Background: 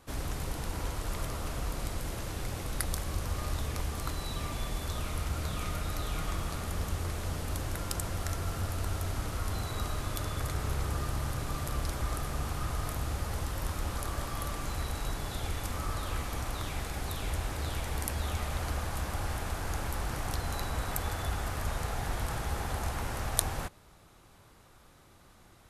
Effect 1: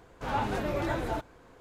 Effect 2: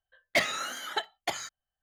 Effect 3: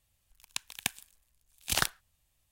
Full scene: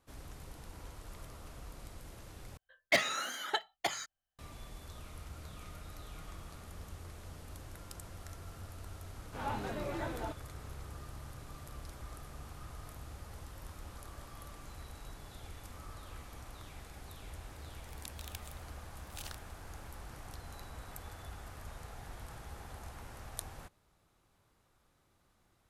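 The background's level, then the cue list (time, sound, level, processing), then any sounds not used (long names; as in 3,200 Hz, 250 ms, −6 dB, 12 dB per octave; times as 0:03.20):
background −14 dB
0:02.57: overwrite with 2 −2.5 dB
0:09.12: mix in 1 −8 dB
0:17.49: mix in 3 −2.5 dB + downward compressor, threshold −41 dBFS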